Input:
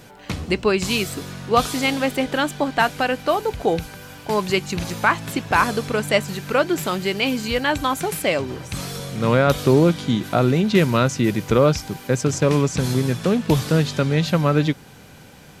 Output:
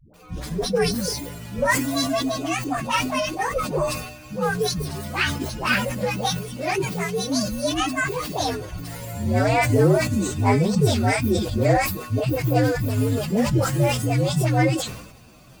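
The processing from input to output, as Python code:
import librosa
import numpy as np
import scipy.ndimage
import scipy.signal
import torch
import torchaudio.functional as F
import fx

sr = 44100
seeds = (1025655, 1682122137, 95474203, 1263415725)

y = fx.partial_stretch(x, sr, pct=129)
y = fx.dispersion(y, sr, late='highs', ms=140.0, hz=410.0)
y = fx.sustainer(y, sr, db_per_s=64.0)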